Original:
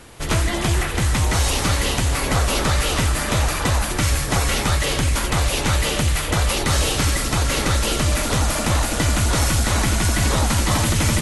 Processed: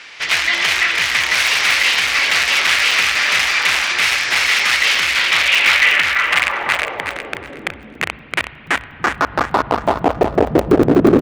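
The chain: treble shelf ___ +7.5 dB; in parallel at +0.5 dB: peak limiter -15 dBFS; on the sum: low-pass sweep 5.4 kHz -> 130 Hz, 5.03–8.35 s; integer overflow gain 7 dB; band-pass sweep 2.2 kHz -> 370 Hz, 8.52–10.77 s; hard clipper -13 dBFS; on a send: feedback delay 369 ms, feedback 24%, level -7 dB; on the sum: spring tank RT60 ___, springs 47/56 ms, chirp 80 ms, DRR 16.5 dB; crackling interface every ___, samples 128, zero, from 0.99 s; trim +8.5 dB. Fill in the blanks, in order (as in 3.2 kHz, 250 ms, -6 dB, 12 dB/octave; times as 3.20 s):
9 kHz, 3.4 s, 0.12 s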